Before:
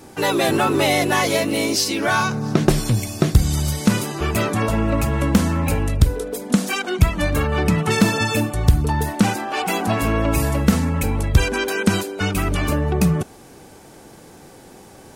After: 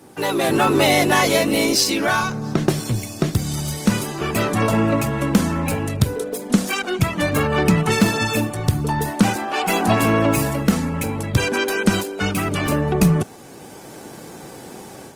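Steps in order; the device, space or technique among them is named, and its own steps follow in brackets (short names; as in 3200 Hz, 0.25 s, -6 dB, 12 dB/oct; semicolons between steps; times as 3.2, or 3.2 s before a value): video call (HPF 100 Hz 24 dB/oct; AGC gain up to 8.5 dB; gain -2 dB; Opus 24 kbps 48000 Hz)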